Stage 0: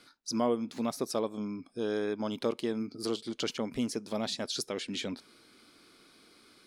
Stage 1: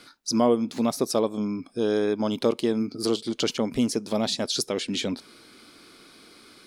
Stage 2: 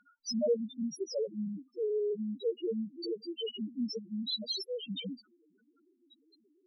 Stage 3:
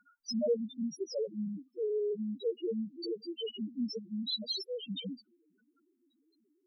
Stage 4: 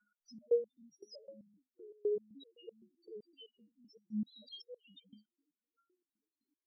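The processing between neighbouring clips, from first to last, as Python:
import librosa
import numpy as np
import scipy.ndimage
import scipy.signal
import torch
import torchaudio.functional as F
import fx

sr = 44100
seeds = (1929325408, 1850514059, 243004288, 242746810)

y1 = fx.dynamic_eq(x, sr, hz=1700.0, q=1.0, threshold_db=-50.0, ratio=4.0, max_db=-4)
y1 = y1 * 10.0 ** (8.5 / 20.0)
y2 = fx.spec_topn(y1, sr, count=1)
y2 = fx.graphic_eq(y2, sr, hz=(125, 250, 4000), db=(10, -9, 12))
y2 = y2 * 10.0 ** (1.0 / 20.0)
y3 = fx.env_phaser(y2, sr, low_hz=560.0, high_hz=1700.0, full_db=-39.5)
y4 = fx.resonator_held(y3, sr, hz=7.8, low_hz=210.0, high_hz=1400.0)
y4 = y4 * 10.0 ** (4.0 / 20.0)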